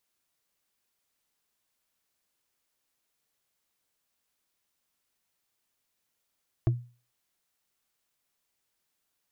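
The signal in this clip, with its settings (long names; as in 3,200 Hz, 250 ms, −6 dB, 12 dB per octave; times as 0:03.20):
struck wood, lowest mode 121 Hz, decay 0.36 s, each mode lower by 7 dB, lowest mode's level −17.5 dB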